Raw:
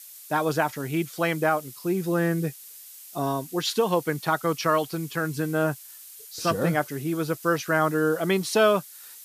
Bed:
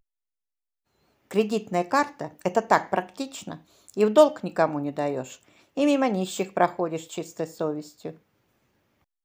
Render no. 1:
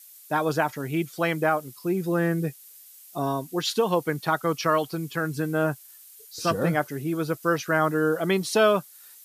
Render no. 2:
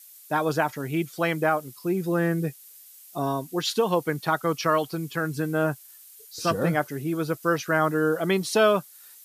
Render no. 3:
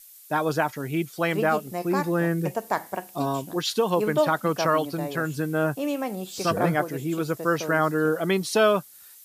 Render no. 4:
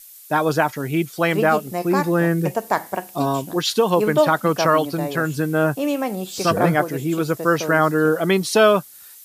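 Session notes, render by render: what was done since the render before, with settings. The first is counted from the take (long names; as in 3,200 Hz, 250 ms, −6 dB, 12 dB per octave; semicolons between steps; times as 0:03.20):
broadband denoise 6 dB, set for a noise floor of −45 dBFS
no processing that can be heard
mix in bed −6.5 dB
level +5.5 dB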